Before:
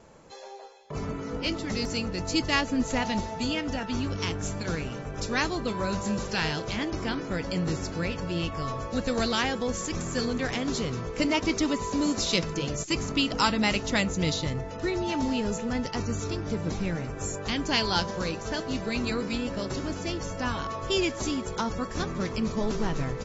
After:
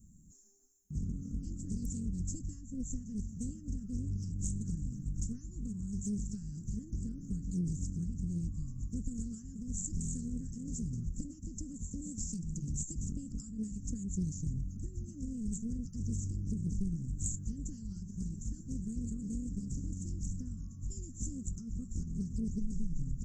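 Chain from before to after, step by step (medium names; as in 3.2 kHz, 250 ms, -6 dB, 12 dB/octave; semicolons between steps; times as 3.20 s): graphic EQ 125/500/1000/2000/4000 Hz -8/-8/+6/+5/-11 dB; compression 6:1, threshold -32 dBFS, peak gain reduction 15 dB; inverse Chebyshev band-stop 490–4000 Hz, stop band 50 dB; treble shelf 3.3 kHz +8 dB; loudspeaker Doppler distortion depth 0.33 ms; trim +5 dB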